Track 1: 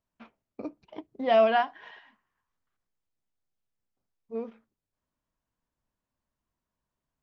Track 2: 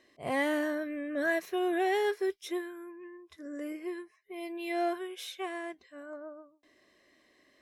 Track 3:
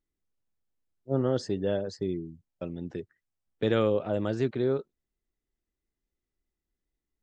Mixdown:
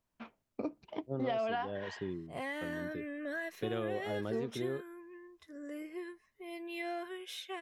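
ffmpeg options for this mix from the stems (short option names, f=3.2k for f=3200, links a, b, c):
-filter_complex "[0:a]alimiter=limit=-17.5dB:level=0:latency=1,volume=2dB[a];[1:a]bandreject=f=2.3k:w=17,adynamicequalizer=threshold=0.00316:dfrequency=2400:dqfactor=0.92:tfrequency=2400:tqfactor=0.92:attack=5:release=100:ratio=0.375:range=3:mode=boostabove:tftype=bell,acompressor=threshold=-31dB:ratio=6,adelay=2100,volume=-5dB[b];[2:a]volume=-8dB[c];[a][b][c]amix=inputs=3:normalize=0,acompressor=threshold=-31dB:ratio=10"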